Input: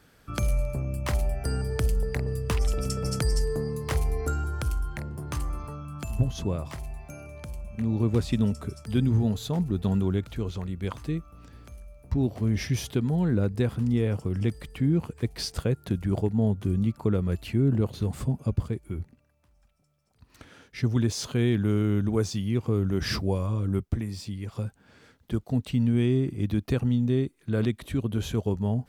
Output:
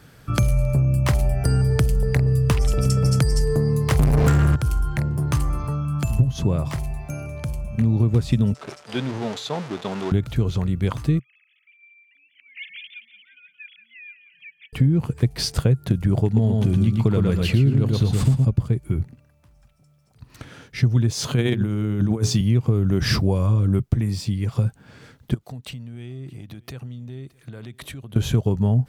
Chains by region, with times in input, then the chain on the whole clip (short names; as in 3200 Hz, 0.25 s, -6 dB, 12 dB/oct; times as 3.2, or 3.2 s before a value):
3.99–4.56 bell 160 Hz +14 dB 0.58 oct + sample leveller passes 5
8.54–10.12 zero-crossing step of -32 dBFS + expander -28 dBFS + BPF 500–5700 Hz
11.19–14.73 sine-wave speech + elliptic high-pass 2300 Hz, stop band 60 dB + feedback echo 0.175 s, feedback 51%, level -12 dB
16.25–18.45 bell 4000 Hz +7 dB 2.4 oct + feedback echo 0.115 s, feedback 29%, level -4 dB
21.25–22.41 HPF 97 Hz + notches 60/120/180/240/300/360/420 Hz + negative-ratio compressor -29 dBFS, ratio -0.5
25.34–28.16 compressor 8:1, threshold -37 dBFS + low shelf 420 Hz -10.5 dB + echo 0.619 s -23.5 dB
whole clip: bell 130 Hz +10 dB 0.62 oct; compressor, threshold -22 dBFS; gain +7.5 dB